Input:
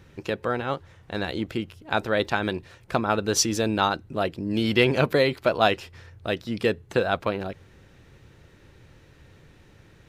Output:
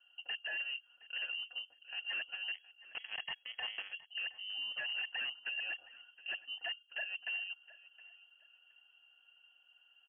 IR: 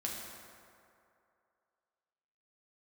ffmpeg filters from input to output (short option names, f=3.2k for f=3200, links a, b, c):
-filter_complex "[0:a]tiltshelf=f=890:g=7,aecho=1:1:4.4:0.95,alimiter=limit=-12.5dB:level=0:latency=1:release=248,afreqshift=48,asplit=3[a][b][c];[a]bandpass=f=530:t=q:w=8,volume=0dB[d];[b]bandpass=f=1.84k:t=q:w=8,volume=-6dB[e];[c]bandpass=f=2.48k:t=q:w=8,volume=-9dB[f];[d][e][f]amix=inputs=3:normalize=0,aeval=exprs='0.0473*(abs(mod(val(0)/0.0473+3,4)-2)-1)':c=same,asettb=1/sr,asplit=3[g][h][i];[g]atrim=end=2.544[j];[h]atrim=start=2.54:end=3.93,asetpts=PTS-STARTPTS,afade=t=in:d=0.004:c=qsin,afade=t=out:st=1.386:d=0.004:c=qsin,aeval=exprs='0.0473*(cos(1*acos(clip(val(0)/0.0473,-1,1)))-cos(1*PI/2))+0.000944*(cos(2*acos(clip(val(0)/0.0473,-1,1)))-cos(2*PI/2))+0.0168*(cos(3*acos(clip(val(0)/0.0473,-1,1)))-cos(3*PI/2))+0.000944*(cos(6*acos(clip(val(0)/0.0473,-1,1)))-cos(6*PI/2))+0.000335*(cos(8*acos(clip(val(0)/0.0473,-1,1)))-cos(8*PI/2))':c=same[k];[i]atrim=start=3.926[l];[j][k]acrossfade=d=0.004:c1=hsin:c2=qsin[m];[m][l]acrossfade=d=0.004:c1=qsin:c2=hsin,aecho=1:1:717|1434:0.112|0.0247,lowpass=f=2.8k:t=q:w=0.5098,lowpass=f=2.8k:t=q:w=0.6013,lowpass=f=2.8k:t=q:w=0.9,lowpass=f=2.8k:t=q:w=2.563,afreqshift=-3300,volume=-7dB"